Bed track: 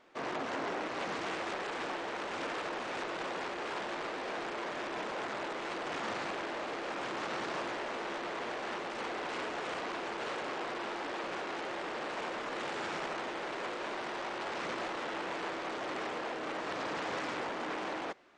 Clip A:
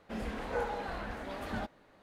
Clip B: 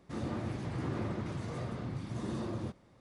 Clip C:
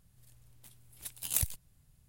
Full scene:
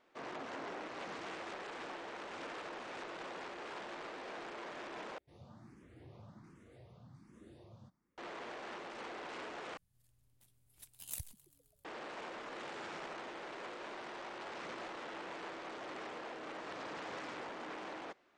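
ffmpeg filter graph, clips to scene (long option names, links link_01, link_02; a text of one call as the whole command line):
ffmpeg -i bed.wav -i cue0.wav -i cue1.wav -i cue2.wav -filter_complex "[0:a]volume=-8dB[link_01];[2:a]asplit=2[link_02][link_03];[link_03]afreqshift=1.3[link_04];[link_02][link_04]amix=inputs=2:normalize=1[link_05];[3:a]asplit=6[link_06][link_07][link_08][link_09][link_10][link_11];[link_07]adelay=131,afreqshift=140,volume=-21.5dB[link_12];[link_08]adelay=262,afreqshift=280,volume=-25.2dB[link_13];[link_09]adelay=393,afreqshift=420,volume=-29dB[link_14];[link_10]adelay=524,afreqshift=560,volume=-32.7dB[link_15];[link_11]adelay=655,afreqshift=700,volume=-36.5dB[link_16];[link_06][link_12][link_13][link_14][link_15][link_16]amix=inputs=6:normalize=0[link_17];[link_01]asplit=3[link_18][link_19][link_20];[link_18]atrim=end=5.184[link_21];[link_05]atrim=end=3,asetpts=PTS-STARTPTS,volume=-17dB[link_22];[link_19]atrim=start=8.176:end=9.774[link_23];[link_17]atrim=end=2.08,asetpts=PTS-STARTPTS,volume=-13dB[link_24];[link_20]atrim=start=11.846[link_25];[link_21][link_22]acrossfade=duration=0.004:curve1=hsin:curve2=hsin[link_26];[link_26][link_23]acrossfade=duration=0.004:curve1=hsin:curve2=hsin[link_27];[link_27][link_24]acrossfade=duration=0.004:curve1=hsin:curve2=hsin[link_28];[link_28][link_25]acrossfade=duration=0.004:curve1=hsin:curve2=hsin" out.wav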